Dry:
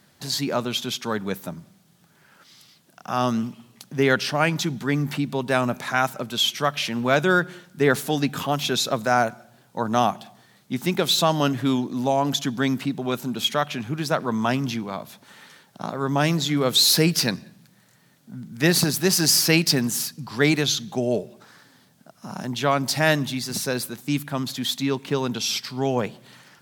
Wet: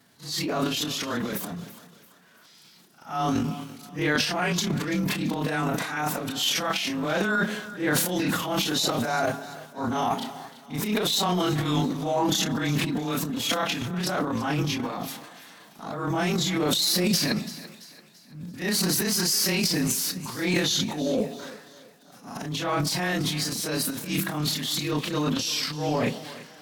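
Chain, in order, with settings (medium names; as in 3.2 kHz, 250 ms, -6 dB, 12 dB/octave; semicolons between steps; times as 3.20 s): short-time spectra conjugated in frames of 77 ms; peak limiter -15.5 dBFS, peak gain reduction 9.5 dB; formant-preserving pitch shift +2.5 st; transient shaper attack -8 dB, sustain +11 dB; thinning echo 337 ms, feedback 44%, high-pass 300 Hz, level -16 dB; trim +1.5 dB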